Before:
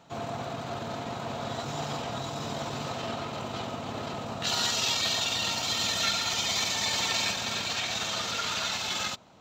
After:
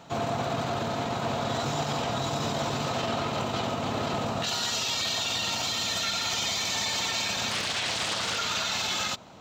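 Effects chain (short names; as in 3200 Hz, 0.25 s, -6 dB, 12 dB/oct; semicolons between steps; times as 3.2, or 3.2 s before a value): limiter -27 dBFS, peak gain reduction 11.5 dB; 7.51–8.37 Doppler distortion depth 0.68 ms; gain +7 dB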